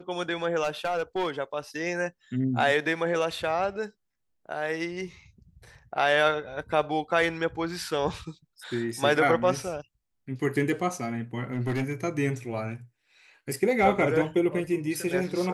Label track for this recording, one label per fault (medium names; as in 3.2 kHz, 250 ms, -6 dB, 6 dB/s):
0.630000	1.300000	clipped -22.5 dBFS
11.530000	11.930000	clipped -23.5 dBFS